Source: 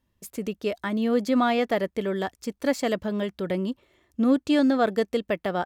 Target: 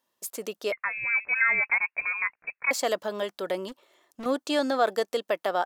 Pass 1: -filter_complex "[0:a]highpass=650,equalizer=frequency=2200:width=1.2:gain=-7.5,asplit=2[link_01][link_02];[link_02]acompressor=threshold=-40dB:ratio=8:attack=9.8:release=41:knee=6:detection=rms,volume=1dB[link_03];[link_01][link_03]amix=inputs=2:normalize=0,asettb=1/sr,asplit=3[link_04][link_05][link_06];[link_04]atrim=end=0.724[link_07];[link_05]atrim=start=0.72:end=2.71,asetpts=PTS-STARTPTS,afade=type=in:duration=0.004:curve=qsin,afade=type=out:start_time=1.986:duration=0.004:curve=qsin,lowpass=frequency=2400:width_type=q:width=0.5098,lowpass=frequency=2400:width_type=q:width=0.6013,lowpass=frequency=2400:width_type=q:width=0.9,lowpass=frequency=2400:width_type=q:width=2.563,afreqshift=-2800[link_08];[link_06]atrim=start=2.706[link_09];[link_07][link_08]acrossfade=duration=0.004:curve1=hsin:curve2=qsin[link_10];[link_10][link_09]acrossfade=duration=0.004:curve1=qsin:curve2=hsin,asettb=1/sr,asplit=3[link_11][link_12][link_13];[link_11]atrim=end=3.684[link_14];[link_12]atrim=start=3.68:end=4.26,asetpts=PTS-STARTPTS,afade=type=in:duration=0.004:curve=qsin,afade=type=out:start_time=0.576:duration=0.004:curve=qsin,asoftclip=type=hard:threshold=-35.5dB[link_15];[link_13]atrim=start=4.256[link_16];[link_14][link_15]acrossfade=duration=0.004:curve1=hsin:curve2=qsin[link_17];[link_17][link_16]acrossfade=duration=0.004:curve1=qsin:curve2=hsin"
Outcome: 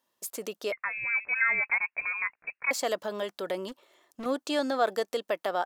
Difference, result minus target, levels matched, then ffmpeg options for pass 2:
downward compressor: peak gain reduction +9.5 dB
-filter_complex "[0:a]highpass=650,equalizer=frequency=2200:width=1.2:gain=-7.5,asplit=2[link_01][link_02];[link_02]acompressor=threshold=-29dB:ratio=8:attack=9.8:release=41:knee=6:detection=rms,volume=1dB[link_03];[link_01][link_03]amix=inputs=2:normalize=0,asettb=1/sr,asplit=3[link_04][link_05][link_06];[link_04]atrim=end=0.724[link_07];[link_05]atrim=start=0.72:end=2.71,asetpts=PTS-STARTPTS,afade=type=in:duration=0.004:curve=qsin,afade=type=out:start_time=1.986:duration=0.004:curve=qsin,lowpass=frequency=2400:width_type=q:width=0.5098,lowpass=frequency=2400:width_type=q:width=0.6013,lowpass=frequency=2400:width_type=q:width=0.9,lowpass=frequency=2400:width_type=q:width=2.563,afreqshift=-2800[link_08];[link_06]atrim=start=2.706[link_09];[link_07][link_08]acrossfade=duration=0.004:curve1=hsin:curve2=qsin[link_10];[link_10][link_09]acrossfade=duration=0.004:curve1=qsin:curve2=hsin,asettb=1/sr,asplit=3[link_11][link_12][link_13];[link_11]atrim=end=3.684[link_14];[link_12]atrim=start=3.68:end=4.26,asetpts=PTS-STARTPTS,afade=type=in:duration=0.004:curve=qsin,afade=type=out:start_time=0.576:duration=0.004:curve=qsin,asoftclip=type=hard:threshold=-35.5dB[link_15];[link_13]atrim=start=4.256[link_16];[link_14][link_15]acrossfade=duration=0.004:curve1=hsin:curve2=qsin[link_17];[link_17][link_16]acrossfade=duration=0.004:curve1=qsin:curve2=hsin"

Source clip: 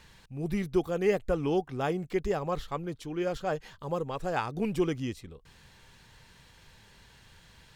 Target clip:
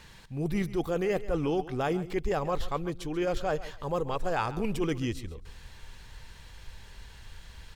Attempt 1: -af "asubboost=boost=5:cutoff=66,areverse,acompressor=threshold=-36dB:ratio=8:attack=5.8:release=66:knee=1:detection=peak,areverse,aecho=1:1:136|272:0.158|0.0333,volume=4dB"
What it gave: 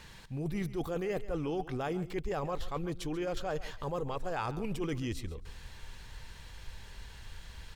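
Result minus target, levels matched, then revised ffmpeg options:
downward compressor: peak gain reduction +6 dB
-af "asubboost=boost=5:cutoff=66,areverse,acompressor=threshold=-29dB:ratio=8:attack=5.8:release=66:knee=1:detection=peak,areverse,aecho=1:1:136|272:0.158|0.0333,volume=4dB"

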